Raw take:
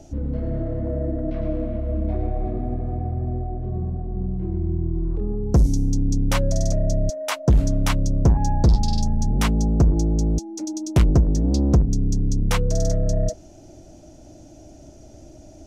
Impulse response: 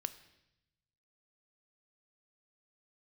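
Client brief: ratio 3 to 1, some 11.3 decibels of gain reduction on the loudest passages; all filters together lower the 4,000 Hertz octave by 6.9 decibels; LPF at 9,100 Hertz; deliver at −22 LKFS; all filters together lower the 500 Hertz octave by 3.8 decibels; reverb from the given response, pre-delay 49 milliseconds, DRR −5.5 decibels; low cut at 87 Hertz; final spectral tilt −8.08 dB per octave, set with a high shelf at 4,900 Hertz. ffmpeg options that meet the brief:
-filter_complex "[0:a]highpass=87,lowpass=9100,equalizer=frequency=500:width_type=o:gain=-5,equalizer=frequency=4000:width_type=o:gain=-6,highshelf=frequency=4900:gain=-6,acompressor=threshold=-29dB:ratio=3,asplit=2[link_01][link_02];[1:a]atrim=start_sample=2205,adelay=49[link_03];[link_02][link_03]afir=irnorm=-1:irlink=0,volume=6.5dB[link_04];[link_01][link_04]amix=inputs=2:normalize=0,volume=3.5dB"

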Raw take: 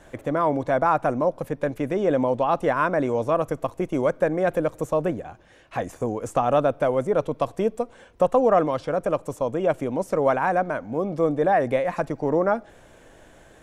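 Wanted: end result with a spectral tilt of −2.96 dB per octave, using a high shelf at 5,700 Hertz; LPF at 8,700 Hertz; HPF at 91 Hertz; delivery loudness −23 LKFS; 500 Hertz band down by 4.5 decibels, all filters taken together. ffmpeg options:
ffmpeg -i in.wav -af "highpass=91,lowpass=8700,equalizer=frequency=500:width_type=o:gain=-5.5,highshelf=frequency=5700:gain=3.5,volume=4dB" out.wav

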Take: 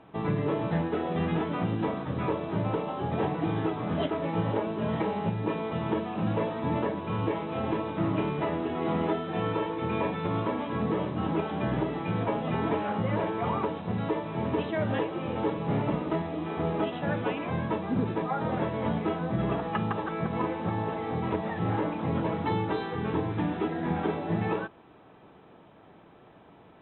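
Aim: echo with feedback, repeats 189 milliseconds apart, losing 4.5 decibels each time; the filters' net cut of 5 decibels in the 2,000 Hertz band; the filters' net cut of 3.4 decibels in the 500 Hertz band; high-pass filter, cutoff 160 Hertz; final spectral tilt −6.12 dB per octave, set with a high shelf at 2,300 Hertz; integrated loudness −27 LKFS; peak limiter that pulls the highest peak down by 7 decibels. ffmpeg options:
ffmpeg -i in.wav -af "highpass=160,equalizer=frequency=500:width_type=o:gain=-4,equalizer=frequency=2000:width_type=o:gain=-8,highshelf=frequency=2300:gain=3.5,alimiter=level_in=0.5dB:limit=-24dB:level=0:latency=1,volume=-0.5dB,aecho=1:1:189|378|567|756|945|1134|1323|1512|1701:0.596|0.357|0.214|0.129|0.0772|0.0463|0.0278|0.0167|0.01,volume=5.5dB" out.wav

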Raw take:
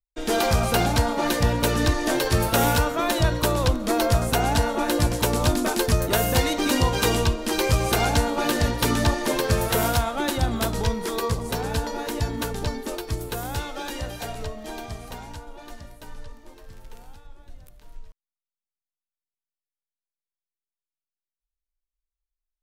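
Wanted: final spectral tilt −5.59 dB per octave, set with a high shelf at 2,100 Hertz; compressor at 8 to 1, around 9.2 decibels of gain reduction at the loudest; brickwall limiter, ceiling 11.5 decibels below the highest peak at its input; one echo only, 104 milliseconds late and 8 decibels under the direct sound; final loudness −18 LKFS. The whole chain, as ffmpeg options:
ffmpeg -i in.wav -af "highshelf=frequency=2100:gain=-6.5,acompressor=threshold=-25dB:ratio=8,alimiter=level_in=3dB:limit=-24dB:level=0:latency=1,volume=-3dB,aecho=1:1:104:0.398,volume=17.5dB" out.wav

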